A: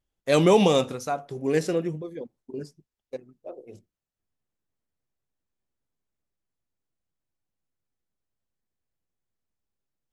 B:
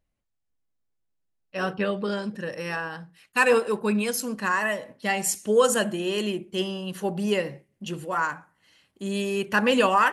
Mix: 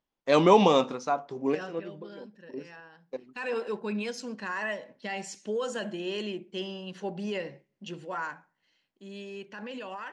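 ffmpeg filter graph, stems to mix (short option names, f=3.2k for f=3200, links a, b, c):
-filter_complex "[0:a]equalizer=f=100:t=o:w=0.67:g=-11,equalizer=f=250:t=o:w=0.67:g=4,equalizer=f=1k:t=o:w=0.67:g=9,volume=-2.5dB[a];[1:a]highpass=120,equalizer=f=1.2k:w=7.6:g=-8,alimiter=limit=-18dB:level=0:latency=1:release=24,volume=4.5dB,afade=t=out:st=1.54:d=0.27:silence=0.316228,afade=t=in:st=3.19:d=0.32:silence=0.251189,afade=t=out:st=8.15:d=0.67:silence=0.421697,asplit=2[b][c];[c]apad=whole_len=446452[d];[a][d]sidechaincompress=threshold=-52dB:ratio=6:attack=6.7:release=119[e];[e][b]amix=inputs=2:normalize=0,lowpass=f=6.1k:w=0.5412,lowpass=f=6.1k:w=1.3066,lowshelf=f=93:g=-9.5"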